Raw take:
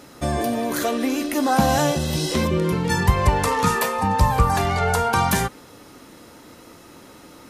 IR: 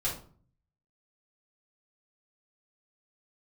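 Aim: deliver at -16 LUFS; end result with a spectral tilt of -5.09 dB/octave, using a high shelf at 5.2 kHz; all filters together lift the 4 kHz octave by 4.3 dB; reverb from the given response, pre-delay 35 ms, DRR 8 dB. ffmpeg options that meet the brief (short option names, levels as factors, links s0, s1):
-filter_complex "[0:a]equalizer=f=4000:t=o:g=8,highshelf=f=5200:g=-6,asplit=2[s0][s1];[1:a]atrim=start_sample=2205,adelay=35[s2];[s1][s2]afir=irnorm=-1:irlink=0,volume=0.211[s3];[s0][s3]amix=inputs=2:normalize=0,volume=1.5"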